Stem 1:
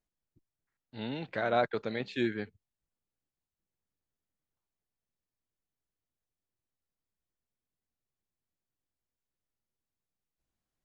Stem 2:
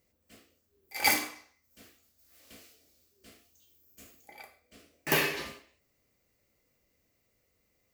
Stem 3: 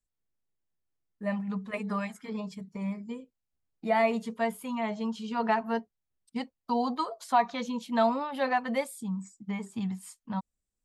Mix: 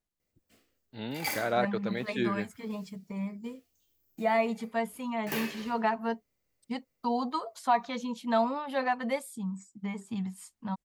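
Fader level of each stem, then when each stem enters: 0.0, -8.5, -1.5 dB; 0.00, 0.20, 0.35 s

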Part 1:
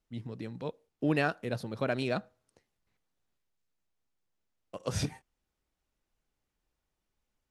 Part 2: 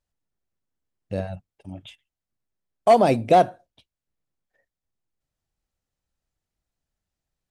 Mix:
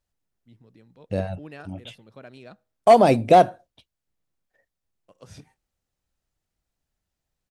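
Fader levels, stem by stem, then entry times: -13.5, +2.0 dB; 0.35, 0.00 s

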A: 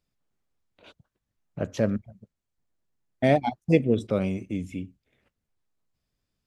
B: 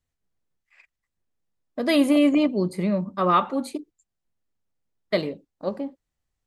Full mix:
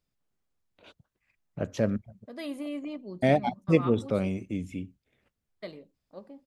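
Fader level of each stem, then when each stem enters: -2.0, -17.5 dB; 0.00, 0.50 s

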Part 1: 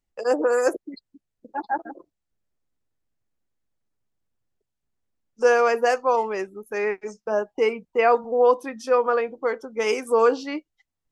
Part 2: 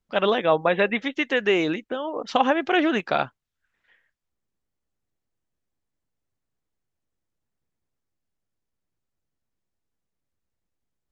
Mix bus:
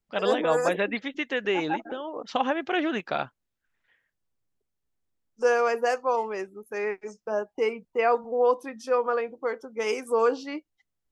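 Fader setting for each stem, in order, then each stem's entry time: -4.5, -5.5 dB; 0.00, 0.00 s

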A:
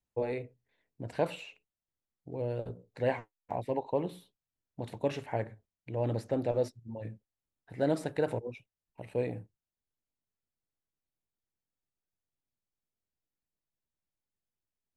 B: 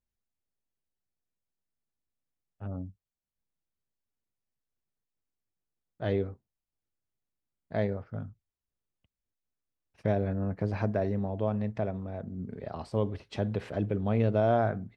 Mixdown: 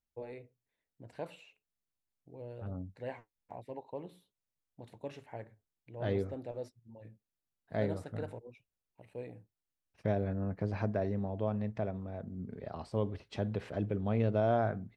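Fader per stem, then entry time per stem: -11.5, -4.0 dB; 0.00, 0.00 s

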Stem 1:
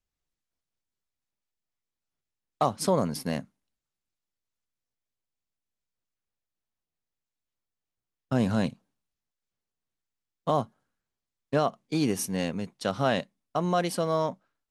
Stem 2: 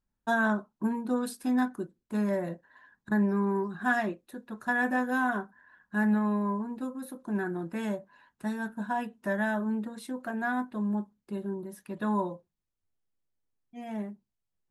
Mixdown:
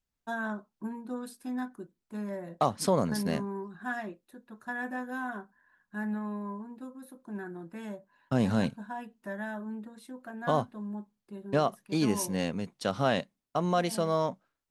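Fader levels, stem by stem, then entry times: -1.5, -8.0 dB; 0.00, 0.00 s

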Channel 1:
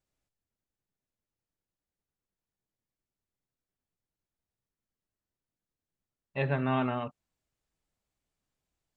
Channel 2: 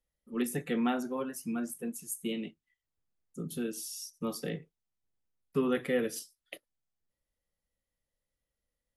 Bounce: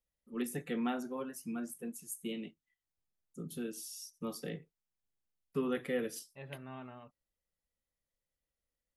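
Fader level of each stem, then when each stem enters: -18.5, -5.0 dB; 0.00, 0.00 s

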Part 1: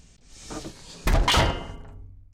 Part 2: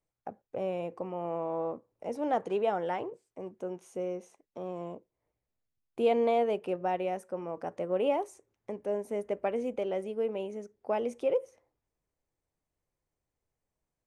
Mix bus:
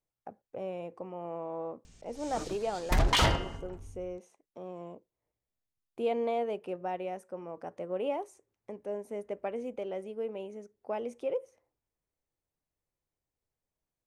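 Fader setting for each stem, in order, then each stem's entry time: -4.5, -4.5 dB; 1.85, 0.00 s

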